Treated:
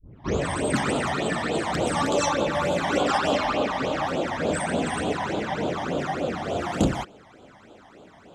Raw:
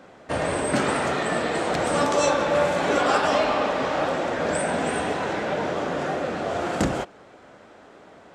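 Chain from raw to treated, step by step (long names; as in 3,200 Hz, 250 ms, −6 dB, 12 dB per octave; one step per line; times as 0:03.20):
turntable start at the beginning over 0.45 s
in parallel at −10 dB: soft clipping −16.5 dBFS, distortion −17 dB
on the sum: all-pass phaser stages 12, 3.4 Hz, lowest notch 420–1,900 Hz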